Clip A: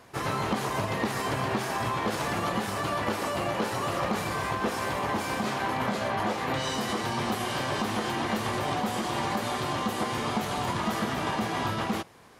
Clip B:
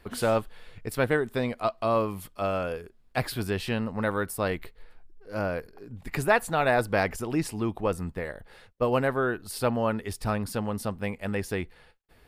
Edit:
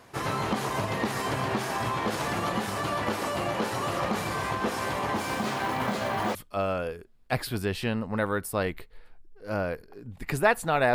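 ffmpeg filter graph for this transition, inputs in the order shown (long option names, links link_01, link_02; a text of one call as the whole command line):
ffmpeg -i cue0.wav -i cue1.wav -filter_complex "[0:a]asettb=1/sr,asplit=3[link_01][link_02][link_03];[link_01]atrim=end=5.174[link_04];[link_02]atrim=start=5.17:end=6.35,asetpts=PTS-STARTPTS,afade=type=in:duration=0.004:curve=qsin,afade=type=out:start_time=1.176:duration=0.004:curve=qsin,acrusher=bits=6:mode=log:mix=0:aa=0.000001[link_05];[link_03]atrim=start=6.346[link_06];[link_04][link_05]acrossfade=duration=0.004:curve1=hsin:curve2=qsin[link_07];[link_07][link_06]acrossfade=duration=0.004:curve1=qsin:curve2=hsin,apad=whole_dur=10.94,atrim=end=10.94,atrim=end=6.352[link_08];[1:a]atrim=start=2.198:end=6.79[link_09];[link_08][link_09]acrossfade=duration=0.004:curve1=hsin:curve2=hsin" out.wav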